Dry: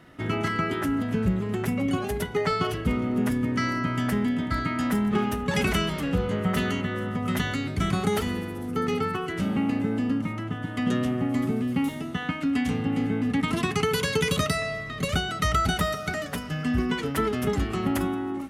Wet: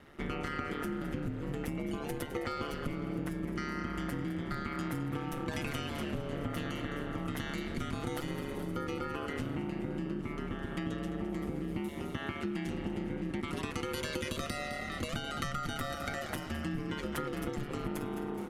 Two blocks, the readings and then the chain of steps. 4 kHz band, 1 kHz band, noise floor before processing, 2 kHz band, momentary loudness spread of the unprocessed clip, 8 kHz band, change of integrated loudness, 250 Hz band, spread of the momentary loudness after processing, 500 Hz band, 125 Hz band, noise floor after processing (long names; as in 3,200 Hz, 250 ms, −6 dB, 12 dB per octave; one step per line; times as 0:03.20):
−10.5 dB, −10.5 dB, −35 dBFS, −10.0 dB, 5 LU, −10.5 dB, −10.5 dB, −11.0 dB, 2 LU, −10.0 dB, −10.0 dB, −40 dBFS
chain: ring modulation 73 Hz
echo with shifted repeats 211 ms, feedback 50%, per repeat +32 Hz, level −12 dB
downward compressor, threshold −31 dBFS, peak gain reduction 10.5 dB
level −1.5 dB